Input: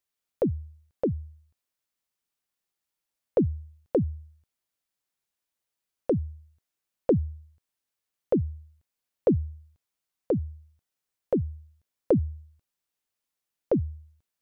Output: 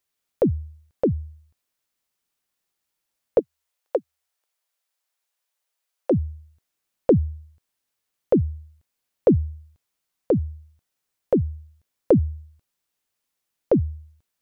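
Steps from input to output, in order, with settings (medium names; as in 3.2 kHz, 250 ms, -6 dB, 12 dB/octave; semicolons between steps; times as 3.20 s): 3.39–6.11 s: high-pass 480 Hz 24 dB/octave; trim +5.5 dB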